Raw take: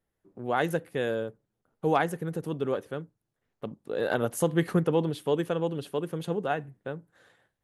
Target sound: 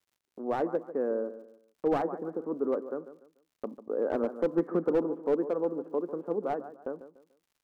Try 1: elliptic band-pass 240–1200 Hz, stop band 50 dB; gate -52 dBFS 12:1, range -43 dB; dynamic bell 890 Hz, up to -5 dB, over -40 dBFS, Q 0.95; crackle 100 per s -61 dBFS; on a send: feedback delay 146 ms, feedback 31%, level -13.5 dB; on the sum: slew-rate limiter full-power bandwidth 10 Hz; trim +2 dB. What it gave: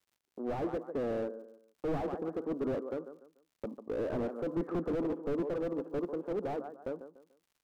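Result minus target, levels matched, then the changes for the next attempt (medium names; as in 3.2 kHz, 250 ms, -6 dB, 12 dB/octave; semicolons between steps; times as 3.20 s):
slew-rate limiter: distortion +16 dB
change: slew-rate limiter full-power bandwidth 35.5 Hz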